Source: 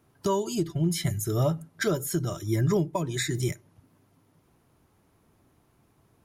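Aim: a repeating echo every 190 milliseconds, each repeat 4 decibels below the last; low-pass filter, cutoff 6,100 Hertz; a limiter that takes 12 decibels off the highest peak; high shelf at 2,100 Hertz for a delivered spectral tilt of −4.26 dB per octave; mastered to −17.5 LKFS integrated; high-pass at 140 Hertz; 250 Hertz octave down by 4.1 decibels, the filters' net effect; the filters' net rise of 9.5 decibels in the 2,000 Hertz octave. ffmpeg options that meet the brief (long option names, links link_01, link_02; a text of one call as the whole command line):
ffmpeg -i in.wav -af "highpass=140,lowpass=6100,equalizer=frequency=250:width_type=o:gain=-6,equalizer=frequency=2000:width_type=o:gain=8.5,highshelf=frequency=2100:gain=6,alimiter=limit=-20dB:level=0:latency=1,aecho=1:1:190|380|570|760|950|1140|1330|1520|1710:0.631|0.398|0.25|0.158|0.0994|0.0626|0.0394|0.0249|0.0157,volume=11.5dB" out.wav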